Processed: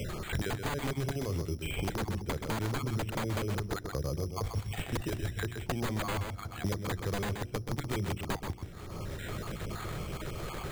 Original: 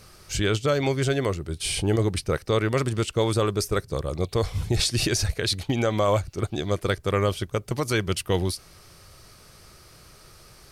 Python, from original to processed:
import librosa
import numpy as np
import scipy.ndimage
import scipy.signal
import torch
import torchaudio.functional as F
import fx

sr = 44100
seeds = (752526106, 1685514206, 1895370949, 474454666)

y = fx.spec_dropout(x, sr, seeds[0], share_pct=26)
y = fx.level_steps(y, sr, step_db=11)
y = (np.mod(10.0 ** (22.5 / 20.0) * y + 1.0, 2.0) - 1.0) / 10.0 ** (22.5 / 20.0)
y = fx.low_shelf(y, sr, hz=460.0, db=9.0)
y = fx.hum_notches(y, sr, base_hz=60, count=6)
y = y + 10.0 ** (-8.0 / 20.0) * np.pad(y, (int(128 * sr / 1000.0), 0))[:len(y)]
y = 10.0 ** (-19.0 / 20.0) * (np.abs((y / 10.0 ** (-19.0 / 20.0) + 3.0) % 4.0 - 2.0) - 1.0)
y = fx.high_shelf(y, sr, hz=4200.0, db=10.0)
y = fx.echo_wet_lowpass(y, sr, ms=166, feedback_pct=79, hz=450.0, wet_db=-24.0)
y = np.repeat(scipy.signal.resample_poly(y, 1, 8), 8)[:len(y)]
y = fx.band_squash(y, sr, depth_pct=100)
y = y * 10.0 ** (-6.5 / 20.0)